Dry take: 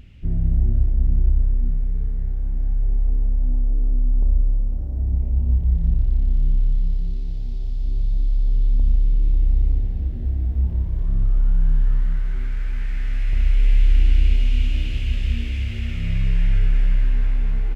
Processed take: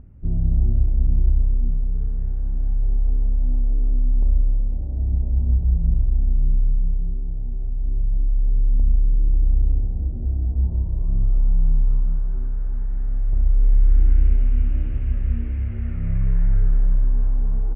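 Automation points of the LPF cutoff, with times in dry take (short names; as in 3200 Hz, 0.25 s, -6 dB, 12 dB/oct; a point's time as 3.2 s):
LPF 24 dB/oct
1.63 s 1200 Hz
2.18 s 1600 Hz
4.29 s 1600 Hz
4.83 s 1000 Hz
13.5 s 1000 Hz
14.2 s 1500 Hz
16.28 s 1500 Hz
17.04 s 1100 Hz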